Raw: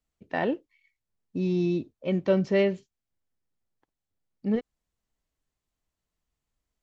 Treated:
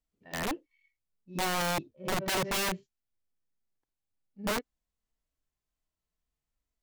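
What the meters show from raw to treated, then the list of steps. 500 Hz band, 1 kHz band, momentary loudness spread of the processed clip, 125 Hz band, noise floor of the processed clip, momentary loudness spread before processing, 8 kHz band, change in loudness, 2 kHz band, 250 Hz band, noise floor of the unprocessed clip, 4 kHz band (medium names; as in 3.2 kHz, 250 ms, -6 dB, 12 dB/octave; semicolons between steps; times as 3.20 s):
-9.5 dB, +5.0 dB, 12 LU, -9.0 dB, under -85 dBFS, 12 LU, no reading, -4.5 dB, +3.0 dB, -10.5 dB, under -85 dBFS, +9.5 dB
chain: harmonic-percussive split percussive -17 dB; pre-echo 78 ms -16.5 dB; integer overflow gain 24 dB; trim -1 dB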